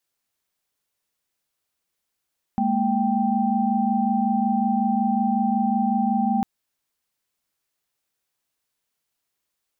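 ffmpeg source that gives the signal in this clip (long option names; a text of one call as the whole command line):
ffmpeg -f lavfi -i "aevalsrc='0.0708*(sin(2*PI*207.65*t)+sin(2*PI*233.08*t)+sin(2*PI*783.99*t))':duration=3.85:sample_rate=44100" out.wav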